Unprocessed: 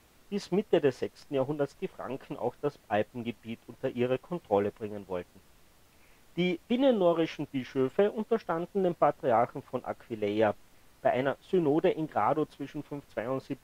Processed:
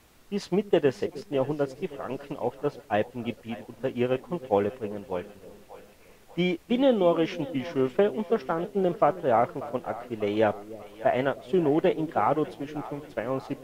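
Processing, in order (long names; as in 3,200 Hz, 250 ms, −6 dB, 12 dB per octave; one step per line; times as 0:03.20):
echo with a time of its own for lows and highs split 550 Hz, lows 311 ms, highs 591 ms, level −16 dB
level +3 dB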